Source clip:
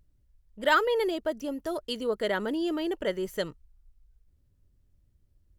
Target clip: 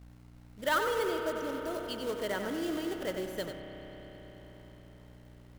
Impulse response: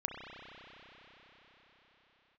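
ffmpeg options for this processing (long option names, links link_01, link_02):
-filter_complex "[0:a]aeval=exprs='val(0)+0.00562*(sin(2*PI*60*n/s)+sin(2*PI*2*60*n/s)/2+sin(2*PI*3*60*n/s)/3+sin(2*PI*4*60*n/s)/4+sin(2*PI*5*60*n/s)/5)':channel_layout=same,acrusher=bits=3:mode=log:mix=0:aa=0.000001,asplit=2[link_01][link_02];[1:a]atrim=start_sample=2205,adelay=93[link_03];[link_02][link_03]afir=irnorm=-1:irlink=0,volume=-6dB[link_04];[link_01][link_04]amix=inputs=2:normalize=0,volume=-6.5dB"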